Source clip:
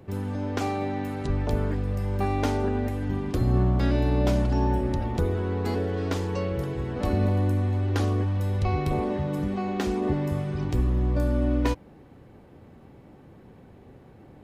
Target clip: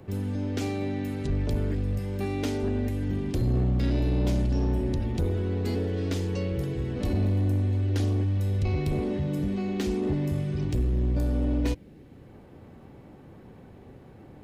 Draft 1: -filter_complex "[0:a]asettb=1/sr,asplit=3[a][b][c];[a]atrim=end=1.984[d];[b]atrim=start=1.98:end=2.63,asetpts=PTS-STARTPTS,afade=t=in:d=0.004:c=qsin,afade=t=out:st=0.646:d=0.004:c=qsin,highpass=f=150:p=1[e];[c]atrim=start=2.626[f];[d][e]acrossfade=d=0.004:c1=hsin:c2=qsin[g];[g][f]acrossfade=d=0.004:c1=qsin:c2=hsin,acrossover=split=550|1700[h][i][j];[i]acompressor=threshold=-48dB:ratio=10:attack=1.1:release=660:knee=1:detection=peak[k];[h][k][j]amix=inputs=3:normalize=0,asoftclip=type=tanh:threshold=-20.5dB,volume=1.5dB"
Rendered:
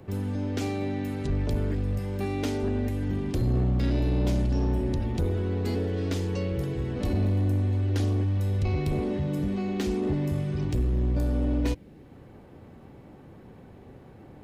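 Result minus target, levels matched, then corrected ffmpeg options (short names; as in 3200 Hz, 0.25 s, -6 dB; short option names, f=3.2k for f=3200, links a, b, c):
compressor: peak gain reduction -6.5 dB
-filter_complex "[0:a]asettb=1/sr,asplit=3[a][b][c];[a]atrim=end=1.984[d];[b]atrim=start=1.98:end=2.63,asetpts=PTS-STARTPTS,afade=t=in:d=0.004:c=qsin,afade=t=out:st=0.646:d=0.004:c=qsin,highpass=f=150:p=1[e];[c]atrim=start=2.626[f];[d][e]acrossfade=d=0.004:c1=hsin:c2=qsin[g];[g][f]acrossfade=d=0.004:c1=qsin:c2=hsin,acrossover=split=550|1700[h][i][j];[i]acompressor=threshold=-55.5dB:ratio=10:attack=1.1:release=660:knee=1:detection=peak[k];[h][k][j]amix=inputs=3:normalize=0,asoftclip=type=tanh:threshold=-20.5dB,volume=1.5dB"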